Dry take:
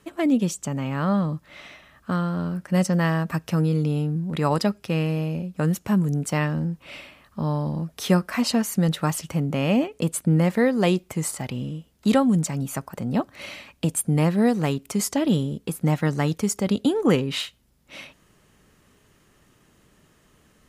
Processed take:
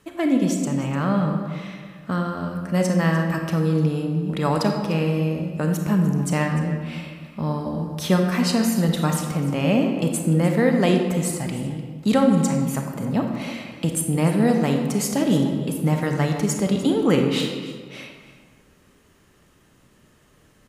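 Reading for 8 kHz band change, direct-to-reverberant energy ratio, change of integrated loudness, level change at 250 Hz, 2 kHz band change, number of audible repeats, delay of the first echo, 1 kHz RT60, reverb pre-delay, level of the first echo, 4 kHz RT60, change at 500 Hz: +1.0 dB, 2.5 dB, +2.0 dB, +2.0 dB, +2.0 dB, 1, 299 ms, 1.6 s, 29 ms, -15.5 dB, 1.0 s, +2.5 dB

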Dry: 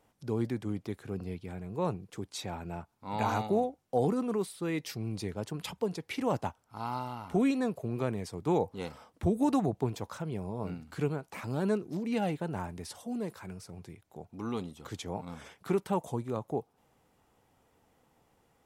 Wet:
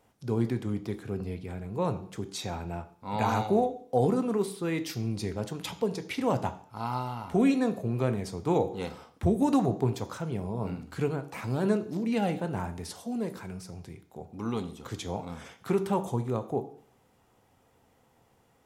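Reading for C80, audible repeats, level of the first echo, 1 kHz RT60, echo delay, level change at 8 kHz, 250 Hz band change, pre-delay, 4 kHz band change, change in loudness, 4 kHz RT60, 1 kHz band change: 17.5 dB, no echo, no echo, 0.50 s, no echo, +3.0 dB, +3.5 dB, 3 ms, +3.0 dB, +3.5 dB, 0.55 s, +3.0 dB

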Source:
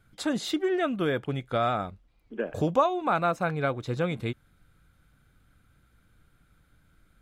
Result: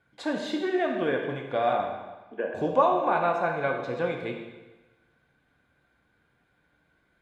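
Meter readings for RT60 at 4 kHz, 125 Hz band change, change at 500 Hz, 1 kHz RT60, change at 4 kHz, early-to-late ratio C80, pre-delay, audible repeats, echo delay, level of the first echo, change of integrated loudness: 1.1 s, -7.5 dB, +2.0 dB, 1.2 s, -3.5 dB, 6.0 dB, 6 ms, no echo, no echo, no echo, +1.0 dB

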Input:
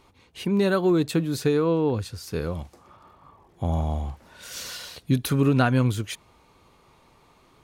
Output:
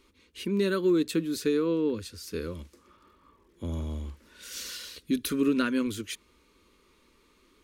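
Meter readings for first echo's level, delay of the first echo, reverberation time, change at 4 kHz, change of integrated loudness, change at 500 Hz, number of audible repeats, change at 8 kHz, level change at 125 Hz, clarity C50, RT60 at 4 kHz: no echo, no echo, no reverb, -2.5 dB, -5.0 dB, -4.5 dB, no echo, -2.0 dB, -13.0 dB, no reverb, no reverb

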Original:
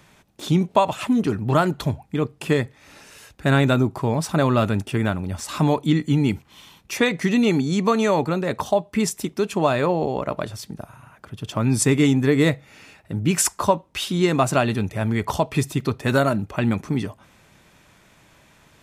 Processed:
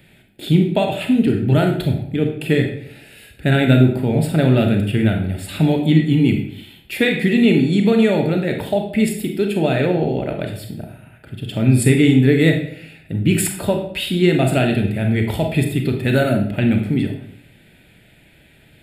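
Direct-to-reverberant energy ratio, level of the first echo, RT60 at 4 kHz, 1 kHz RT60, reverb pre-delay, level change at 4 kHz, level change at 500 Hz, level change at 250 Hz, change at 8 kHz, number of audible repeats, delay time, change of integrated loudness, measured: 3.0 dB, no echo, 0.50 s, 0.65 s, 28 ms, +3.5 dB, +3.0 dB, +5.5 dB, -2.5 dB, no echo, no echo, +4.0 dB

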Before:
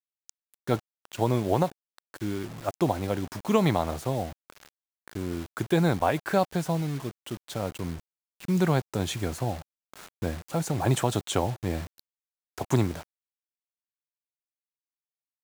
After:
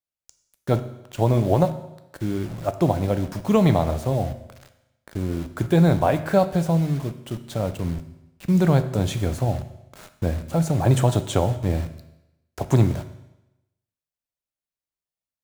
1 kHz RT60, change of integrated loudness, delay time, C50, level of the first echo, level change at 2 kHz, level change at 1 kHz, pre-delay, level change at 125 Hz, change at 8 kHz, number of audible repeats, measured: 0.95 s, +6.0 dB, no echo, 12.5 dB, no echo, +0.5 dB, +2.5 dB, 8 ms, +8.0 dB, +0.5 dB, no echo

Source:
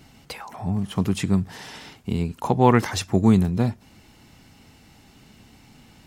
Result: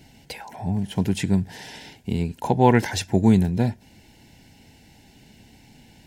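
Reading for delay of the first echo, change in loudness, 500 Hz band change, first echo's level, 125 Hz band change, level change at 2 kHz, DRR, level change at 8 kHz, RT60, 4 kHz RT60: no echo, 0.0 dB, 0.0 dB, no echo, 0.0 dB, +1.0 dB, no reverb, 0.0 dB, no reverb, no reverb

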